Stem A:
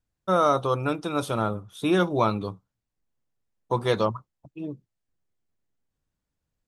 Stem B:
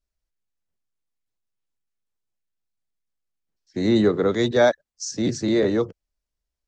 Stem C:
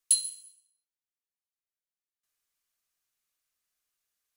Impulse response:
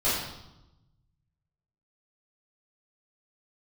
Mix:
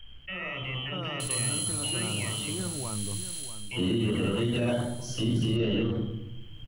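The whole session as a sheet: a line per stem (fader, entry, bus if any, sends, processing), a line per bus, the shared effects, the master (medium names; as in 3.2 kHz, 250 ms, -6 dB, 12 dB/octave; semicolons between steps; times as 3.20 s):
-14.0 dB, 0.00 s, bus A, send -22.5 dB, echo send -7 dB, level flattener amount 70%
-2.5 dB, 0.00 s, bus A, send -13 dB, no echo send, compression, threshold -22 dBFS, peak gain reduction 10 dB
-4.5 dB, 1.20 s, no bus, no send, no echo send, spectral levelling over time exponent 0.2; level flattener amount 50%; auto duck -13 dB, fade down 0.30 s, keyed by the second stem
bus A: 0.0 dB, frequency inversion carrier 3.2 kHz; peak limiter -27 dBFS, peak gain reduction 10 dB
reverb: on, RT60 0.90 s, pre-delay 3 ms
echo: feedback delay 640 ms, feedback 25%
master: tone controls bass +11 dB, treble -6 dB; peak limiter -19 dBFS, peak gain reduction 9.5 dB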